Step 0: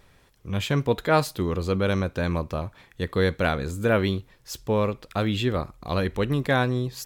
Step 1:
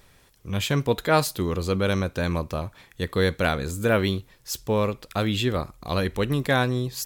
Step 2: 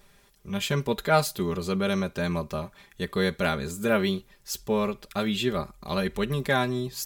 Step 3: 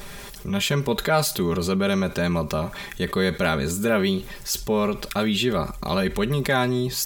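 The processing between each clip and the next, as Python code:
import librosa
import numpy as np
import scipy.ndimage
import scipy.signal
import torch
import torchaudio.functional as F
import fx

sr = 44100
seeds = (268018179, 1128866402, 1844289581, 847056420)

y1 = fx.high_shelf(x, sr, hz=4500.0, db=8.0)
y2 = y1 + 0.73 * np.pad(y1, (int(5.0 * sr / 1000.0), 0))[:len(y1)]
y2 = F.gain(torch.from_numpy(y2), -4.0).numpy()
y3 = fx.env_flatten(y2, sr, amount_pct=50)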